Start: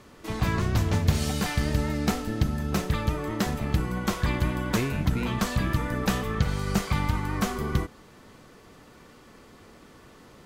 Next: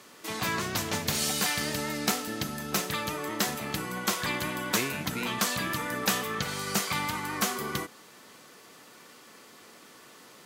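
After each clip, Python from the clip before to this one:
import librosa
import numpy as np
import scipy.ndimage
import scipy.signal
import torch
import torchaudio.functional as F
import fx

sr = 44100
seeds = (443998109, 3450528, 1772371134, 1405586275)

y = scipy.signal.sosfilt(scipy.signal.butter(2, 150.0, 'highpass', fs=sr, output='sos'), x)
y = fx.tilt_eq(y, sr, slope=2.5)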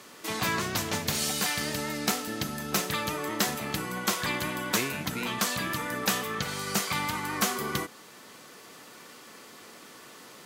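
y = fx.rider(x, sr, range_db=5, speed_s=2.0)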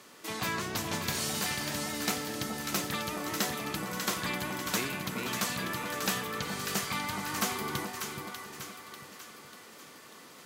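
y = fx.echo_split(x, sr, split_hz=1000.0, low_ms=423, high_ms=593, feedback_pct=52, wet_db=-6)
y = y * 10.0 ** (-4.5 / 20.0)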